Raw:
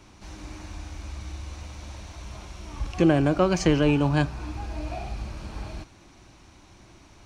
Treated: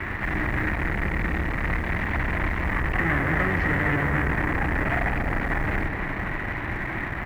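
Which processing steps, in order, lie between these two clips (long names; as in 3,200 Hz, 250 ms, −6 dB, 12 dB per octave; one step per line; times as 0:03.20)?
sub-octave generator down 1 octave, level −1 dB
parametric band 510 Hz −6 dB 0.33 octaves
in parallel at −2.5 dB: compressor whose output falls as the input rises −25 dBFS, ratio −1
on the sum: fuzz pedal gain 43 dB, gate −47 dBFS
transistor ladder low-pass 2,000 Hz, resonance 80%
floating-point word with a short mantissa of 4 bits
double-tracking delay 48 ms −12 dB
on a send: bucket-brigade delay 246 ms, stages 2,048, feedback 78%, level −8.5 dB
on the sum: highs frequency-modulated by the lows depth 0.13 ms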